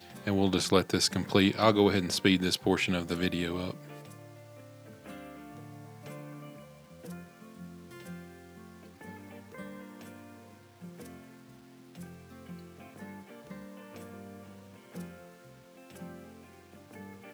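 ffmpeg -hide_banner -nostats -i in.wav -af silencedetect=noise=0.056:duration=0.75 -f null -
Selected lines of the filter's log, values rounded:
silence_start: 3.70
silence_end: 17.34 | silence_duration: 13.64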